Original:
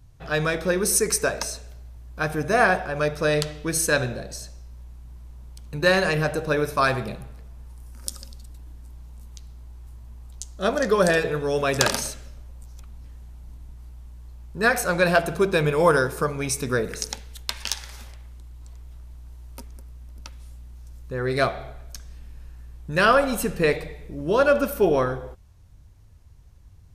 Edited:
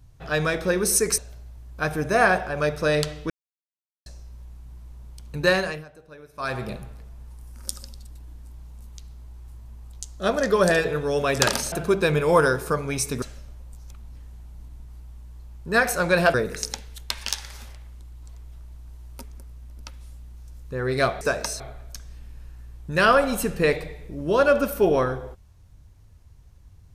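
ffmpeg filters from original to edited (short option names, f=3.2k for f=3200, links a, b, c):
-filter_complex "[0:a]asplit=11[a][b][c][d][e][f][g][h][i][j][k];[a]atrim=end=1.182[l];[b]atrim=start=1.568:end=3.69,asetpts=PTS-STARTPTS,afade=t=out:st=2.118:d=0.004:c=hsin[m];[c]atrim=start=3.69:end=4.45,asetpts=PTS-STARTPTS,volume=0[n];[d]atrim=start=4.45:end=6.24,asetpts=PTS-STARTPTS,afade=t=in:d=0.004:c=hsin,afade=t=out:st=1.4:d=0.39:silence=0.0749894[o];[e]atrim=start=6.24:end=6.72,asetpts=PTS-STARTPTS,volume=-22.5dB[p];[f]atrim=start=6.72:end=12.112,asetpts=PTS-STARTPTS,afade=t=in:d=0.39:silence=0.0749894[q];[g]atrim=start=15.228:end=16.732[r];[h]atrim=start=12.108:end=15.232[s];[i]atrim=start=16.728:end=21.602[t];[j]atrim=start=1.178:end=1.572[u];[k]atrim=start=21.598[v];[m][n][o][p][q]concat=n=5:v=0:a=1[w];[l][w]acrossfade=d=0.004:c1=hsin:c2=hsin[x];[x][r]acrossfade=d=0.004:c1=hsin:c2=hsin[y];[y][s]acrossfade=d=0.004:c1=hsin:c2=hsin[z];[z][t]acrossfade=d=0.004:c1=hsin:c2=hsin[aa];[aa][u]acrossfade=d=0.004:c1=hsin:c2=hsin[ab];[ab][v]acrossfade=d=0.004:c1=hsin:c2=hsin"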